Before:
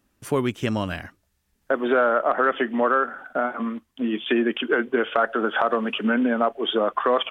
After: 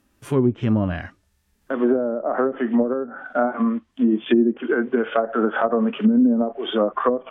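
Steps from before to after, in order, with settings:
harmonic and percussive parts rebalanced percussive −13 dB
treble cut that deepens with the level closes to 330 Hz, closed at −19 dBFS
level +7.5 dB

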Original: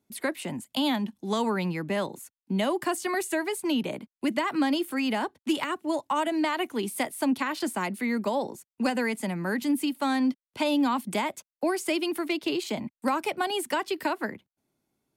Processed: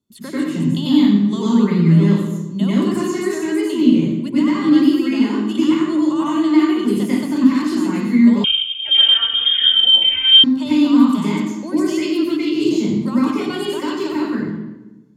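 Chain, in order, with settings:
convolution reverb RT60 1.1 s, pre-delay 89 ms, DRR −9.5 dB
0:08.44–0:10.44: voice inversion scrambler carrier 3,400 Hz
level −8 dB

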